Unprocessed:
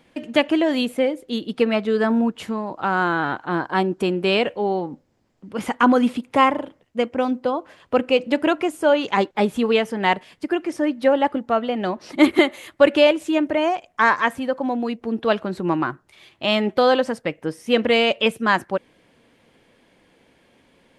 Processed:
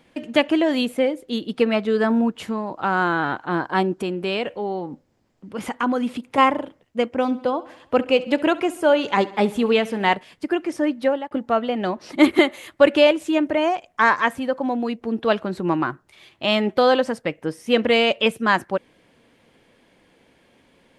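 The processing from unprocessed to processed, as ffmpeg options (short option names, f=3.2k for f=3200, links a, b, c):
-filter_complex "[0:a]asettb=1/sr,asplit=3[a][b][c];[a]atrim=end=3.994[d];[b]atrim=start=3.99:end=6.38,asetpts=PTS-STARTPTS,afade=t=in:d=0.004:c=qsin,afade=t=out:st=2.386:d=0.004:c=qsin,acompressor=threshold=-29dB:ratio=1.5:attack=3.2:release=140:knee=1:detection=peak[e];[c]atrim=start=6.376[f];[d][e]acrossfade=d=0.004:c1=hsin:c2=qsin[g];[g][f]acrossfade=d=0.004:c1=qsin:c2=hsin,asettb=1/sr,asplit=3[h][i][j];[h]atrim=end=7.184[k];[i]atrim=start=7.18:end=10.15,asetpts=PTS-STARTPTS,afade=t=in:d=0.004:c=qsin,afade=t=out:st=2.966:d=0.004:c=qsin,aecho=1:1:68|136|204|272|340:0.112|0.0651|0.0377|0.0219|0.0127,atrim=end_sample=130977[l];[j]atrim=start=10.146[m];[k][l]acrossfade=d=0.004:c1=hsin:c2=qsin[n];[n][m]acrossfade=d=0.004:c1=qsin:c2=hsin,asplit=2[o][p];[o]atrim=end=11.31,asetpts=PTS-STARTPTS,afade=t=out:st=10.86:d=0.45:c=qsin[q];[p]atrim=start=11.31,asetpts=PTS-STARTPTS,afade=t=in:d=0.004:c=hsin[r];[q][r]concat=n=2:v=0:a=1"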